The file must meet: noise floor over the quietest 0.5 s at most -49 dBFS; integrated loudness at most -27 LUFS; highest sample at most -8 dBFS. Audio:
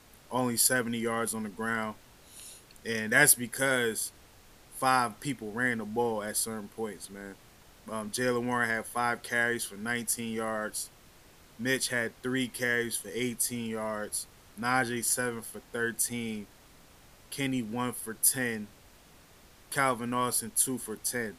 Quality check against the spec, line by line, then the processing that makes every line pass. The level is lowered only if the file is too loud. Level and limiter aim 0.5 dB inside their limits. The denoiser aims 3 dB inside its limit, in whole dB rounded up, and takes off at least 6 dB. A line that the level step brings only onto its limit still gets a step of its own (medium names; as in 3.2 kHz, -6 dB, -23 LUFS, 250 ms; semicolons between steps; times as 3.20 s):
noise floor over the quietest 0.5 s -57 dBFS: pass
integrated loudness -30.0 LUFS: pass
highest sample -7.5 dBFS: fail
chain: peak limiter -8.5 dBFS